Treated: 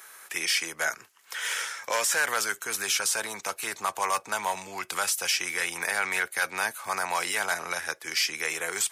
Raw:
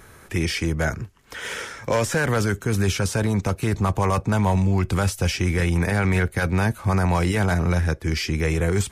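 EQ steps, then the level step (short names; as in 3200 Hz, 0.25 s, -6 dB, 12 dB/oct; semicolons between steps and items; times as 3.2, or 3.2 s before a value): HPF 930 Hz 12 dB/oct; high shelf 6500 Hz +8.5 dB; 0.0 dB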